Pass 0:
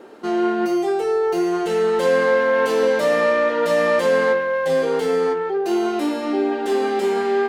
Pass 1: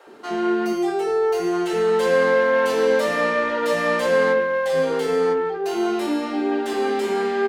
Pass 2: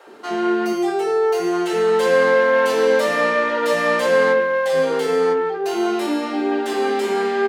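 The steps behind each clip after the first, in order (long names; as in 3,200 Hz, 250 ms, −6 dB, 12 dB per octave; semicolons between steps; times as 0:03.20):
multiband delay without the direct sound highs, lows 70 ms, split 550 Hz
low-shelf EQ 160 Hz −8 dB; level +3 dB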